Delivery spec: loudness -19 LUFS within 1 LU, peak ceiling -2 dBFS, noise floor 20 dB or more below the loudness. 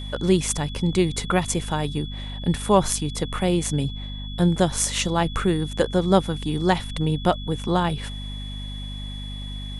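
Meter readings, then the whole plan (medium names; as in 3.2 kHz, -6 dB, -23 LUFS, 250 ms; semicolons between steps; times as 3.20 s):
hum 50 Hz; highest harmonic 250 Hz; hum level -30 dBFS; steady tone 3.4 kHz; tone level -38 dBFS; loudness -23.5 LUFS; peak level -3.0 dBFS; loudness target -19.0 LUFS
-> de-hum 50 Hz, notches 5; band-stop 3.4 kHz, Q 30; trim +4.5 dB; peak limiter -2 dBFS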